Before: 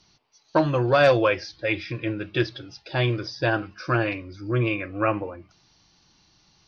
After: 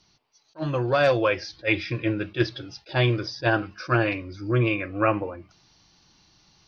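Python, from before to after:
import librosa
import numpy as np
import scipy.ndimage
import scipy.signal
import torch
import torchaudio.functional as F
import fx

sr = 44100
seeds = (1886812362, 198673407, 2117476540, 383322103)

y = fx.rider(x, sr, range_db=3, speed_s=0.5)
y = fx.attack_slew(y, sr, db_per_s=400.0)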